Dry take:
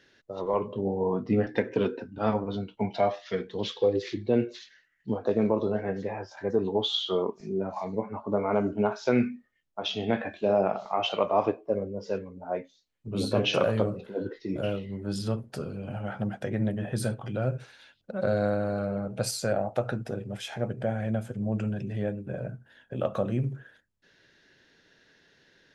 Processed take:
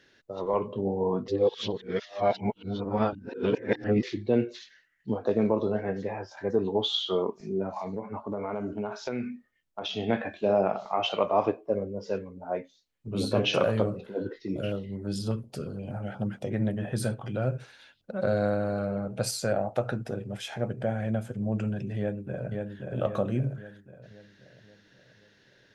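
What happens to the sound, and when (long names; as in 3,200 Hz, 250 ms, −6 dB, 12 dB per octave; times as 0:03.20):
0:01.28–0:04.03: reverse
0:07.69–0:09.94: downward compressor 4 to 1, threshold −29 dBFS
0:14.36–0:16.51: notch on a step sequencer 8.4 Hz 720–2,900 Hz
0:21.98–0:22.53: delay throw 530 ms, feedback 50%, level −3.5 dB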